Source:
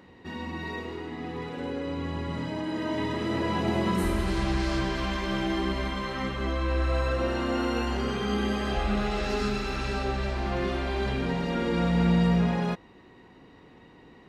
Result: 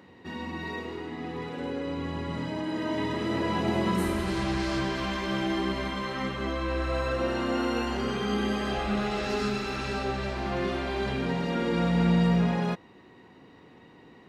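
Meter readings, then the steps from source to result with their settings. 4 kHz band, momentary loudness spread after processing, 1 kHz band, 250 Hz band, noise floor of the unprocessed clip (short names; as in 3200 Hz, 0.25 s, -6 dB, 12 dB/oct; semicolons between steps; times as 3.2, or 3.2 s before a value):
0.0 dB, 10 LU, 0.0 dB, 0.0 dB, -53 dBFS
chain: HPF 85 Hz 12 dB/oct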